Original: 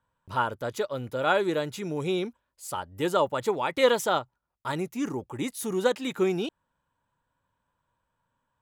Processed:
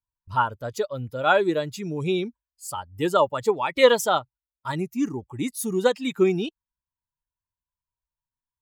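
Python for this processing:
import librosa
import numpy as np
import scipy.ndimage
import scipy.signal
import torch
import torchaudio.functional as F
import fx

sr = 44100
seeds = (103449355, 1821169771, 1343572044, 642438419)

y = fx.bin_expand(x, sr, power=1.5)
y = y * librosa.db_to_amplitude(6.5)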